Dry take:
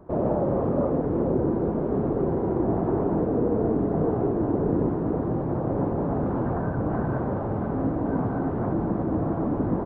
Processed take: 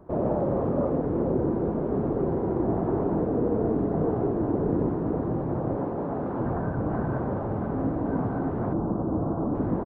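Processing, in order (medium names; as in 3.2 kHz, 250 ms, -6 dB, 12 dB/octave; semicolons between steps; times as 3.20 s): 5.75–6.39 s: bass shelf 160 Hz -10 dB; 8.73–9.55 s: steep low-pass 1.4 kHz 36 dB/octave; speakerphone echo 90 ms, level -22 dB; trim -1.5 dB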